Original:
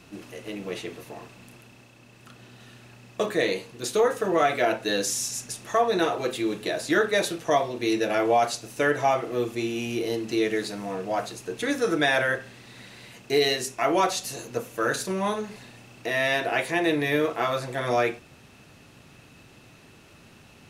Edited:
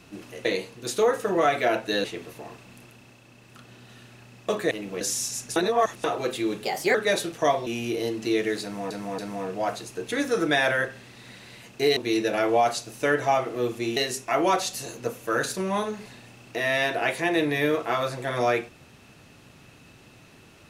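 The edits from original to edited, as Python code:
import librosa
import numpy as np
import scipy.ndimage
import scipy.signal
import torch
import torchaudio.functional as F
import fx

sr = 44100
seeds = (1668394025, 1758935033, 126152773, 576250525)

y = fx.edit(x, sr, fx.swap(start_s=0.45, length_s=0.3, other_s=3.42, other_length_s=1.59),
    fx.reverse_span(start_s=5.56, length_s=0.48),
    fx.speed_span(start_s=6.64, length_s=0.37, speed=1.21),
    fx.move(start_s=7.73, length_s=2.0, to_s=13.47),
    fx.repeat(start_s=10.69, length_s=0.28, count=3), tone=tone)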